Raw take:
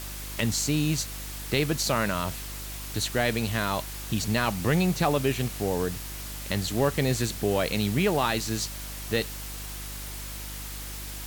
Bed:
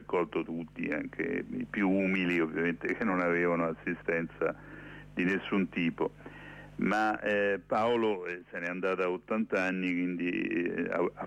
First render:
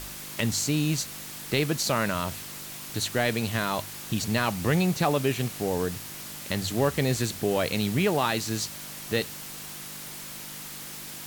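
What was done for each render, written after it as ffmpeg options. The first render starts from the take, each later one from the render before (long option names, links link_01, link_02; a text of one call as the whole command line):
ffmpeg -i in.wav -af "bandreject=frequency=50:width_type=h:width=4,bandreject=frequency=100:width_type=h:width=4" out.wav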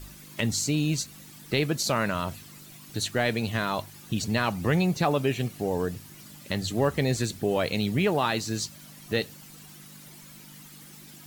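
ffmpeg -i in.wav -af "afftdn=noise_reduction=12:noise_floor=-40" out.wav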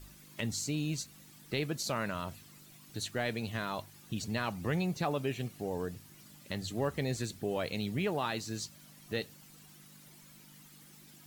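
ffmpeg -i in.wav -af "volume=-8.5dB" out.wav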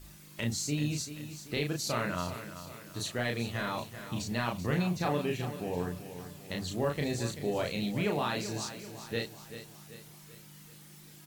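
ffmpeg -i in.wav -filter_complex "[0:a]asplit=2[link_01][link_02];[link_02]adelay=34,volume=-2.5dB[link_03];[link_01][link_03]amix=inputs=2:normalize=0,aecho=1:1:386|772|1158|1544|1930:0.266|0.13|0.0639|0.0313|0.0153" out.wav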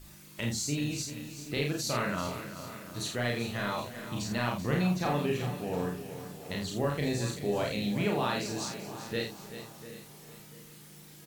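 ffmpeg -i in.wav -filter_complex "[0:a]asplit=2[link_01][link_02];[link_02]adelay=49,volume=-5dB[link_03];[link_01][link_03]amix=inputs=2:normalize=0,asplit=2[link_04][link_05];[link_05]adelay=693,lowpass=frequency=2000:poles=1,volume=-15dB,asplit=2[link_06][link_07];[link_07]adelay=693,lowpass=frequency=2000:poles=1,volume=0.42,asplit=2[link_08][link_09];[link_09]adelay=693,lowpass=frequency=2000:poles=1,volume=0.42,asplit=2[link_10][link_11];[link_11]adelay=693,lowpass=frequency=2000:poles=1,volume=0.42[link_12];[link_04][link_06][link_08][link_10][link_12]amix=inputs=5:normalize=0" out.wav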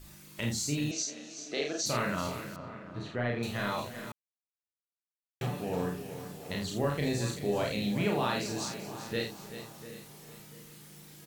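ffmpeg -i in.wav -filter_complex "[0:a]asettb=1/sr,asplit=3[link_01][link_02][link_03];[link_01]atrim=end=0.914[link_04];[link_02]atrim=start=0.91:end=1.86,asetpts=PTS-STARTPTS,afade=type=in:duration=0.004:curve=qsin,afade=type=out:start_time=0.946:duration=0.004:curve=qsin,highpass=frequency=250:width=0.5412,highpass=frequency=250:width=1.3066,equalizer=frequency=290:width_type=q:width=4:gain=-4,equalizer=frequency=670:width_type=q:width=4:gain=9,equalizer=frequency=950:width_type=q:width=4:gain=-6,equalizer=frequency=2500:width_type=q:width=4:gain=-4,equalizer=frequency=6100:width_type=q:width=4:gain=9,lowpass=frequency=7000:width=0.5412,lowpass=frequency=7000:width=1.3066[link_05];[link_03]atrim=start=1.856[link_06];[link_04][link_05]acrossfade=duration=0.004:curve1=hsin:curve2=qsin[link_07];[link_07][link_06]acrossfade=duration=0.004:curve1=qsin:curve2=hsin,asettb=1/sr,asplit=3[link_08][link_09][link_10];[link_08]atrim=end=2.564[link_11];[link_09]atrim=start=2.56:end=3.43,asetpts=PTS-STARTPTS,afade=type=in:duration=0.004:curve=qsin,afade=type=out:start_time=0.866:duration=0.004:curve=qsin,lowpass=2000[link_12];[link_10]atrim=start=3.426[link_13];[link_11][link_12]acrossfade=duration=0.004:curve1=hsin:curve2=qsin[link_14];[link_14][link_13]acrossfade=duration=0.004:curve1=qsin:curve2=hsin,asplit=3[link_15][link_16][link_17];[link_15]atrim=end=4.12,asetpts=PTS-STARTPTS,afade=type=out:start_time=4.116:duration=0.004:curve=hsin[link_18];[link_16]atrim=start=4.12:end=5.41,asetpts=PTS-STARTPTS,volume=0[link_19];[link_17]atrim=start=5.41,asetpts=PTS-STARTPTS,afade=type=in:duration=0.004:curve=hsin[link_20];[link_18][link_19][link_20]concat=n=3:v=0:a=1" out.wav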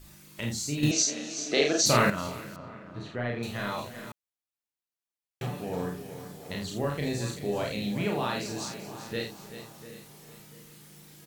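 ffmpeg -i in.wav -filter_complex "[0:a]asettb=1/sr,asplit=3[link_01][link_02][link_03];[link_01]atrim=end=5.664[link_04];[link_02]atrim=start=5.66:end=6.51,asetpts=PTS-STARTPTS,afade=type=in:duration=0.004:curve=qsin,afade=type=out:start_time=0.846:duration=0.004:curve=qsin,bandreject=frequency=2700:width=11[link_05];[link_03]atrim=start=6.506[link_06];[link_04][link_05]acrossfade=duration=0.004:curve1=hsin:curve2=qsin[link_07];[link_07][link_06]acrossfade=duration=0.004:curve1=qsin:curve2=hsin,asplit=3[link_08][link_09][link_10];[link_08]atrim=end=0.832[link_11];[link_09]atrim=start=0.828:end=2.102,asetpts=PTS-STARTPTS,volume=9dB[link_12];[link_10]atrim=start=2.098[link_13];[link_11][link_12]acrossfade=duration=0.004:curve1=hsin:curve2=hsin[link_14];[link_14][link_13]acrossfade=duration=0.004:curve1=hsin:curve2=hsin" out.wav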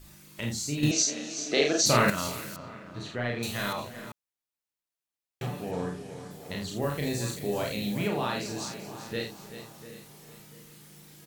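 ffmpeg -i in.wav -filter_complex "[0:a]asettb=1/sr,asplit=3[link_01][link_02][link_03];[link_01]atrim=end=2.084[link_04];[link_02]atrim=start=2.08:end=3.73,asetpts=PTS-STARTPTS,afade=type=in:duration=0.004:curve=qsin,afade=type=out:start_time=1.646:duration=0.004:curve=qsin,highshelf=frequency=3700:gain=12[link_05];[link_03]atrim=start=3.726[link_06];[link_04][link_05]acrossfade=duration=0.004:curve1=hsin:curve2=qsin[link_07];[link_07][link_06]acrossfade=duration=0.004:curve1=qsin:curve2=hsin,asettb=1/sr,asplit=3[link_08][link_09][link_10];[link_08]atrim=end=5.714[link_11];[link_09]atrim=start=5.71:end=6.31,asetpts=PTS-STARTPTS,afade=type=in:duration=0.004:curve=qsin,afade=type=out:start_time=0.596:duration=0.004:curve=qsin,lowpass=frequency=10000:width=0.5412,lowpass=frequency=10000:width=1.3066[link_12];[link_10]atrim=start=6.306[link_13];[link_11][link_12]acrossfade=duration=0.004:curve1=hsin:curve2=qsin[link_14];[link_14][link_13]acrossfade=duration=0.004:curve1=qsin:curve2=hsin,asettb=1/sr,asplit=3[link_15][link_16][link_17];[link_15]atrim=end=6.824[link_18];[link_16]atrim=start=6.82:end=8.08,asetpts=PTS-STARTPTS,afade=type=in:duration=0.004:curve=qsin,afade=type=out:start_time=1.256:duration=0.004:curve=qsin,highshelf=frequency=9600:gain=11[link_19];[link_17]atrim=start=8.076[link_20];[link_18][link_19]acrossfade=duration=0.004:curve1=hsin:curve2=qsin[link_21];[link_21][link_20]acrossfade=duration=0.004:curve1=qsin:curve2=hsin" out.wav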